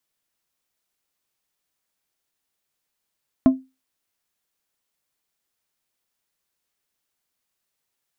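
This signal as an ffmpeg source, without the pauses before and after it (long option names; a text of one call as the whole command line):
ffmpeg -f lavfi -i "aevalsrc='0.473*pow(10,-3*t/0.25)*sin(2*PI*262*t)+0.141*pow(10,-3*t/0.132)*sin(2*PI*655*t)+0.0422*pow(10,-3*t/0.095)*sin(2*PI*1048*t)+0.0126*pow(10,-3*t/0.081)*sin(2*PI*1310*t)+0.00376*pow(10,-3*t/0.067)*sin(2*PI*1703*t)':duration=0.89:sample_rate=44100" out.wav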